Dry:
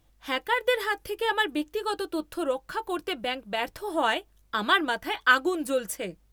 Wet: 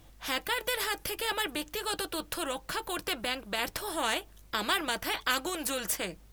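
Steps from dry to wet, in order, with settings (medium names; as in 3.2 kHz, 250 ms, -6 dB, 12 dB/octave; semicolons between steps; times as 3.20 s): spectrum-flattening compressor 2:1; trim -7 dB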